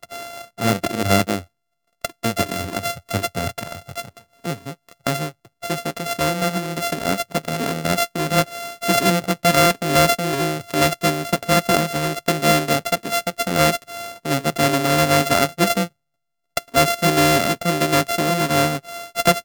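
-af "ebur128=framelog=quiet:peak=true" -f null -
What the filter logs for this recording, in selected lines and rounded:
Integrated loudness:
  I:         -19.9 LUFS
  Threshold: -30.3 LUFS
Loudness range:
  LRA:         8.3 LU
  Threshold: -40.4 LUFS
  LRA low:   -26.6 LUFS
  LRA high:  -18.3 LUFS
True peak:
  Peak:       -1.1 dBFS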